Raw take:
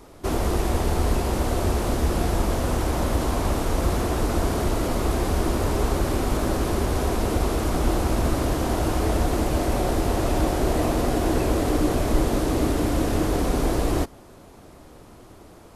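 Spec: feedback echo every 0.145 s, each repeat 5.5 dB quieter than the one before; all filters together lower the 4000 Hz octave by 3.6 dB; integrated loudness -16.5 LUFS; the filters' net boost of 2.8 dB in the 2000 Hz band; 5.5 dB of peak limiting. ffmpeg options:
-af "equalizer=f=2k:t=o:g=5,equalizer=f=4k:t=o:g=-6.5,alimiter=limit=-14dB:level=0:latency=1,aecho=1:1:145|290|435|580|725|870|1015:0.531|0.281|0.149|0.079|0.0419|0.0222|0.0118,volume=7dB"

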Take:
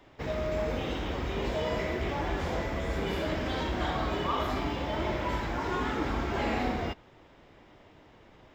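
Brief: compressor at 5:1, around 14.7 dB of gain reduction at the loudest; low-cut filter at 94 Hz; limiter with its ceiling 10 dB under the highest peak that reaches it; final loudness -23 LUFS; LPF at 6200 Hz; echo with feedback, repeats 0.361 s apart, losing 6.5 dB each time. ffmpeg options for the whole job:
-af "highpass=94,lowpass=6.2k,acompressor=threshold=-44dB:ratio=5,alimiter=level_in=18.5dB:limit=-24dB:level=0:latency=1,volume=-18.5dB,aecho=1:1:361|722|1083|1444|1805|2166:0.473|0.222|0.105|0.0491|0.0231|0.0109,volume=27.5dB"

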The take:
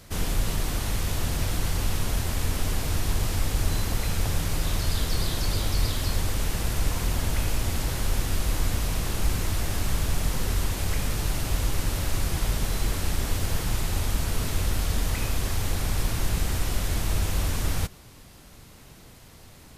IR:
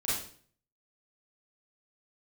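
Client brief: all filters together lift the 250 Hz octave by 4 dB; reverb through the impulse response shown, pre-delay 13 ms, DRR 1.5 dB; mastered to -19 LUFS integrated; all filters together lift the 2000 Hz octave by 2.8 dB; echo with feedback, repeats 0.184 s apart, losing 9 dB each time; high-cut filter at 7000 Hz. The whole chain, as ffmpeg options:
-filter_complex "[0:a]lowpass=7k,equalizer=f=250:t=o:g=5.5,equalizer=f=2k:t=o:g=3.5,aecho=1:1:184|368|552|736:0.355|0.124|0.0435|0.0152,asplit=2[a][b];[1:a]atrim=start_sample=2205,adelay=13[c];[b][c]afir=irnorm=-1:irlink=0,volume=-7.5dB[d];[a][d]amix=inputs=2:normalize=0,volume=6dB"

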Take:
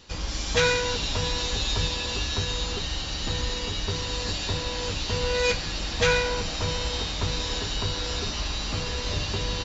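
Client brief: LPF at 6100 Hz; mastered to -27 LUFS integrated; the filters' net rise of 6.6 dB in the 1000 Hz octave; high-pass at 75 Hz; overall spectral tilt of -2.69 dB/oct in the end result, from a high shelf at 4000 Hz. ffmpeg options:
-af "highpass=75,lowpass=6.1k,equalizer=f=1k:t=o:g=7,highshelf=f=4k:g=5,volume=-2dB"

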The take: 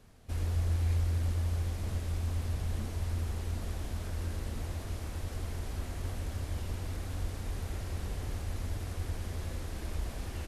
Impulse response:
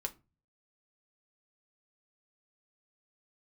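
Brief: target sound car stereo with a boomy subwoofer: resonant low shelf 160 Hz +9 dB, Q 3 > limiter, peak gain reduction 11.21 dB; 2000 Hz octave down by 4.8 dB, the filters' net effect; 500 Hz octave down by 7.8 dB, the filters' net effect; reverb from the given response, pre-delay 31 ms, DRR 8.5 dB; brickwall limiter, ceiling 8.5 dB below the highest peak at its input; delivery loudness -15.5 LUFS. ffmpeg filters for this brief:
-filter_complex "[0:a]equalizer=f=500:t=o:g=-8.5,equalizer=f=2k:t=o:g=-5.5,alimiter=level_in=6dB:limit=-24dB:level=0:latency=1,volume=-6dB,asplit=2[a][b];[1:a]atrim=start_sample=2205,adelay=31[c];[b][c]afir=irnorm=-1:irlink=0,volume=-8.5dB[d];[a][d]amix=inputs=2:normalize=0,lowshelf=f=160:t=q:w=3:g=9,volume=20dB,alimiter=limit=-8dB:level=0:latency=1"

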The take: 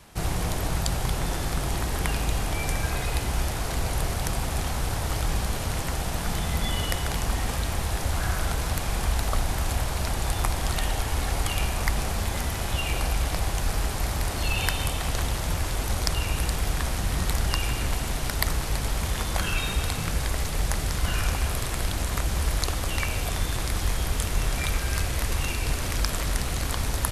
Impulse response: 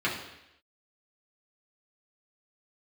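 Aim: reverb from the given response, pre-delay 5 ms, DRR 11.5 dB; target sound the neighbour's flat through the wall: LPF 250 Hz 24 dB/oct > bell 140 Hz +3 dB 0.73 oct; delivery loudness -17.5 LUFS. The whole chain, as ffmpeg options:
-filter_complex "[0:a]asplit=2[a][b];[1:a]atrim=start_sample=2205,adelay=5[c];[b][c]afir=irnorm=-1:irlink=0,volume=-22.5dB[d];[a][d]amix=inputs=2:normalize=0,lowpass=f=250:w=0.5412,lowpass=f=250:w=1.3066,equalizer=f=140:t=o:w=0.73:g=3,volume=12.5dB"

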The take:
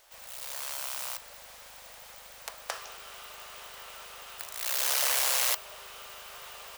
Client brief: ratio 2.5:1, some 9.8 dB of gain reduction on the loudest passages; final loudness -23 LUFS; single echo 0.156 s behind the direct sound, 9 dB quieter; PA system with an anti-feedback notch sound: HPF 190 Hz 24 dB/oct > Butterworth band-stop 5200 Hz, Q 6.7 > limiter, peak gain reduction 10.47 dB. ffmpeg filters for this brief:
-af "acompressor=threshold=-38dB:ratio=2.5,highpass=f=190:w=0.5412,highpass=f=190:w=1.3066,asuperstop=centerf=5200:order=8:qfactor=6.7,aecho=1:1:156:0.355,volume=18.5dB,alimiter=limit=-10dB:level=0:latency=1"

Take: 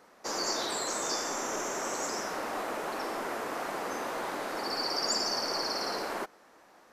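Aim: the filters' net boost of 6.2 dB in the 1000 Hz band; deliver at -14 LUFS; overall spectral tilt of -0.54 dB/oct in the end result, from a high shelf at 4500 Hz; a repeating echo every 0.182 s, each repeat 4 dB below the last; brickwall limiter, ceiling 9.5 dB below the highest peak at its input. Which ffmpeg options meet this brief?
-af "equalizer=f=1k:t=o:g=7.5,highshelf=f=4.5k:g=5,alimiter=level_in=0.5dB:limit=-24dB:level=0:latency=1,volume=-0.5dB,aecho=1:1:182|364|546|728|910|1092|1274|1456|1638:0.631|0.398|0.25|0.158|0.0994|0.0626|0.0394|0.0249|0.0157,volume=17dB"

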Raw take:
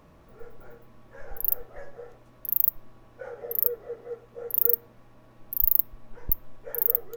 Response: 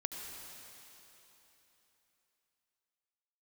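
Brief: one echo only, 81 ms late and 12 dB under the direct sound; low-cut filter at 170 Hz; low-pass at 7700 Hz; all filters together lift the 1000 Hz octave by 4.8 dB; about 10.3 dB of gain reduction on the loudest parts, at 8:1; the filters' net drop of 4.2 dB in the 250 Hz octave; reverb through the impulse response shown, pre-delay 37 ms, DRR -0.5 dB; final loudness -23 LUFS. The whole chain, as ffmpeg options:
-filter_complex "[0:a]highpass=170,lowpass=7.7k,equalizer=f=250:t=o:g=-5,equalizer=f=1k:t=o:g=7,acompressor=threshold=-40dB:ratio=8,aecho=1:1:81:0.251,asplit=2[a][b];[1:a]atrim=start_sample=2205,adelay=37[c];[b][c]afir=irnorm=-1:irlink=0,volume=0dB[d];[a][d]amix=inputs=2:normalize=0,volume=20.5dB"

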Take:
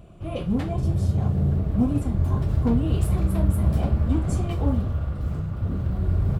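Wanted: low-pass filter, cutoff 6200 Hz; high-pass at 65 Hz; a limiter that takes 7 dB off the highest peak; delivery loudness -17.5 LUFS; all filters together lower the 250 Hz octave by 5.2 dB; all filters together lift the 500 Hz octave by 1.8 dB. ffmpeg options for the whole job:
-af "highpass=65,lowpass=6.2k,equalizer=f=250:t=o:g=-8,equalizer=f=500:t=o:g=4.5,volume=10.5dB,alimiter=limit=-7.5dB:level=0:latency=1"

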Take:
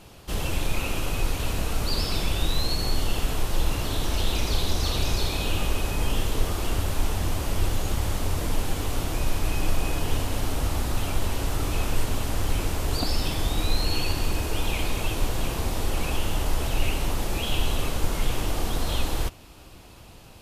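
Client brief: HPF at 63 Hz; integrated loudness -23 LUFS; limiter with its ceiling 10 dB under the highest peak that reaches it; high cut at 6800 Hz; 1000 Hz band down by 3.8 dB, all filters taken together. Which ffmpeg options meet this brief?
-af "highpass=63,lowpass=6.8k,equalizer=f=1k:t=o:g=-5,volume=11dB,alimiter=limit=-13.5dB:level=0:latency=1"

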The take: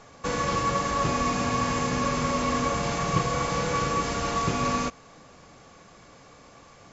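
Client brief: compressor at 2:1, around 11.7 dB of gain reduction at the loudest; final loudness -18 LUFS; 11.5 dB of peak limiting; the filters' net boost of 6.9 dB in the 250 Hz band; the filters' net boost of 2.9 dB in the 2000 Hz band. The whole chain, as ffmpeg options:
-af "equalizer=f=250:t=o:g=8,equalizer=f=2k:t=o:g=3.5,acompressor=threshold=-40dB:ratio=2,volume=22dB,alimiter=limit=-8.5dB:level=0:latency=1"

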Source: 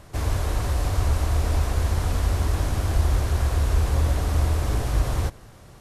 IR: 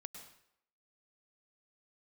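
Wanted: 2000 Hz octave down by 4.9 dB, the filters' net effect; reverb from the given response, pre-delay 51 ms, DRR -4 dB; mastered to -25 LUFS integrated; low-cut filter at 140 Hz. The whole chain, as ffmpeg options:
-filter_complex "[0:a]highpass=140,equalizer=f=2k:t=o:g=-6.5,asplit=2[a][b];[1:a]atrim=start_sample=2205,adelay=51[c];[b][c]afir=irnorm=-1:irlink=0,volume=8.5dB[d];[a][d]amix=inputs=2:normalize=0,volume=1.5dB"

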